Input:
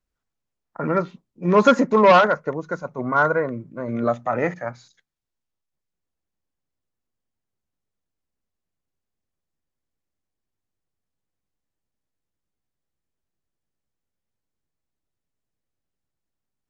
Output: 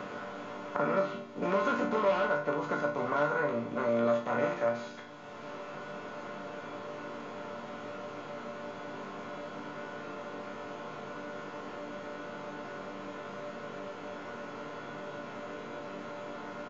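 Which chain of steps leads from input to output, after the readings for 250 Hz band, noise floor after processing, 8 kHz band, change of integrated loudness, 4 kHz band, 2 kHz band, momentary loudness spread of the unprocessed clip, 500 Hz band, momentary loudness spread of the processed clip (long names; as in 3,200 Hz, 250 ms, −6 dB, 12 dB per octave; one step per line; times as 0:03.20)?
−10.0 dB, −44 dBFS, can't be measured, −15.5 dB, −9.5 dB, −8.5 dB, 17 LU, −8.5 dB, 13 LU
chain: compressor on every frequency bin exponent 0.4
downsampling to 16,000 Hz
resonators tuned to a chord G2 minor, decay 0.4 s
multiband upward and downward compressor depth 70%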